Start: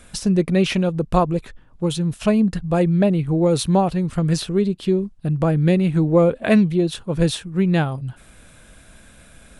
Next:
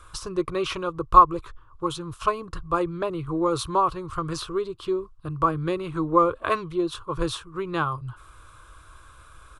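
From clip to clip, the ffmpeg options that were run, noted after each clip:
ffmpeg -i in.wav -af "firequalizer=gain_entry='entry(110,0);entry(210,-27);entry(320,-3);entry(740,-10);entry(1100,15);entry(1800,-9);entry(3100,-4);entry(9000,-7)':delay=0.05:min_phase=1,volume=-1dB" out.wav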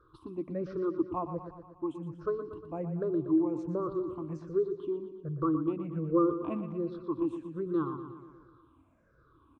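ffmpeg -i in.wav -af "afftfilt=real='re*pow(10,20/40*sin(2*PI*(0.59*log(max(b,1)*sr/1024/100)/log(2)-(-1.3)*(pts-256)/sr)))':imag='im*pow(10,20/40*sin(2*PI*(0.59*log(max(b,1)*sr/1024/100)/log(2)-(-1.3)*(pts-256)/sr)))':win_size=1024:overlap=0.75,bandpass=frequency=260:width_type=q:width=2.9:csg=0,aecho=1:1:119|238|357|476|595|714|833:0.316|0.187|0.11|0.0649|0.0383|0.0226|0.0133" out.wav

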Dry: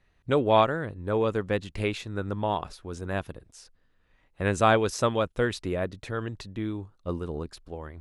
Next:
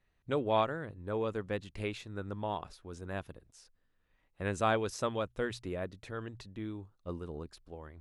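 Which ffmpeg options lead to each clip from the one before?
ffmpeg -i in.wav -af "bandreject=frequency=60:width_type=h:width=6,bandreject=frequency=120:width_type=h:width=6,volume=-8.5dB" out.wav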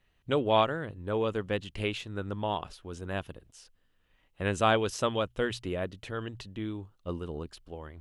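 ffmpeg -i in.wav -af "equalizer=frequency=3000:width=4.7:gain=9,volume=4.5dB" out.wav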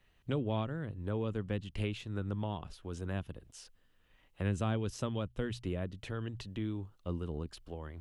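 ffmpeg -i in.wav -filter_complex "[0:a]acrossover=split=250[link_01][link_02];[link_02]acompressor=threshold=-46dB:ratio=2.5[link_03];[link_01][link_03]amix=inputs=2:normalize=0,volume=1.5dB" out.wav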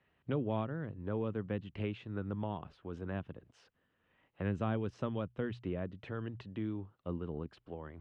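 ffmpeg -i in.wav -af "highpass=110,lowpass=2200" out.wav

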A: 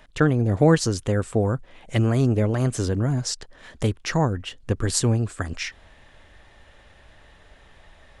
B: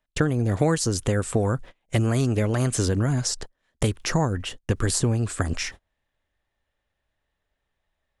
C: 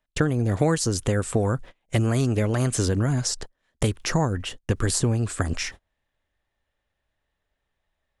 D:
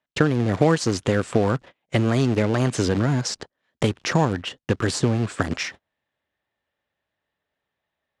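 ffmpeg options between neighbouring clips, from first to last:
ffmpeg -i in.wav -filter_complex "[0:a]agate=range=-34dB:threshold=-38dB:ratio=16:detection=peak,highshelf=frequency=8100:gain=4.5,acrossover=split=1200|6300[link_01][link_02][link_03];[link_01]acompressor=threshold=-27dB:ratio=4[link_04];[link_02]acompressor=threshold=-40dB:ratio=4[link_05];[link_03]acompressor=threshold=-35dB:ratio=4[link_06];[link_04][link_05][link_06]amix=inputs=3:normalize=0,volume=6.5dB" out.wav
ffmpeg -i in.wav -af anull out.wav
ffmpeg -i in.wav -filter_complex "[0:a]asplit=2[link_01][link_02];[link_02]acrusher=bits=5:dc=4:mix=0:aa=0.000001,volume=-5dB[link_03];[link_01][link_03]amix=inputs=2:normalize=0,highpass=130,lowpass=4900" out.wav

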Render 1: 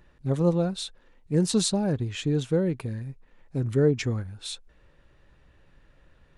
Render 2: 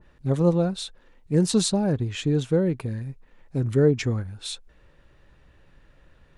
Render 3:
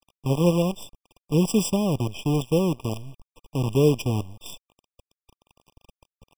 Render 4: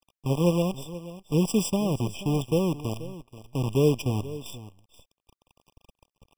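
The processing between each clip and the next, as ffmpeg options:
ffmpeg -i in.wav -af "adynamicequalizer=threshold=0.00708:dfrequency=1900:dqfactor=0.7:tfrequency=1900:tqfactor=0.7:attack=5:release=100:ratio=0.375:range=1.5:mode=cutabove:tftype=highshelf,volume=2.5dB" out.wav
ffmpeg -i in.wav -af "acrusher=bits=5:dc=4:mix=0:aa=0.000001,afftfilt=real='re*eq(mod(floor(b*sr/1024/1200),2),0)':imag='im*eq(mod(floor(b*sr/1024/1200),2),0)':win_size=1024:overlap=0.75" out.wav
ffmpeg -i in.wav -af "aecho=1:1:481:0.168,volume=-2.5dB" out.wav

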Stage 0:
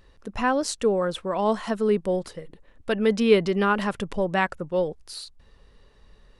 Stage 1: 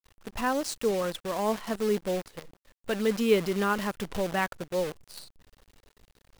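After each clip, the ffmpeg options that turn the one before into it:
ffmpeg -i in.wav -af "acrusher=bits=6:dc=4:mix=0:aa=0.000001,volume=-5dB" out.wav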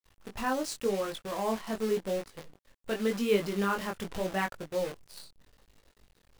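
ffmpeg -i in.wav -af "flanger=delay=19.5:depth=3.5:speed=0.87" out.wav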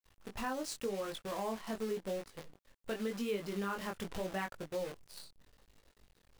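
ffmpeg -i in.wav -af "acompressor=threshold=-32dB:ratio=3,volume=-3dB" out.wav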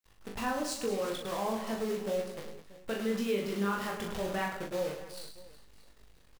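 ffmpeg -i in.wav -af "aecho=1:1:40|104|206.4|370.2|632.4:0.631|0.398|0.251|0.158|0.1,volume=3dB" out.wav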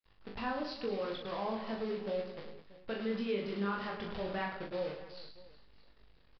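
ffmpeg -i in.wav -af "aresample=11025,aresample=44100,volume=-3.5dB" out.wav

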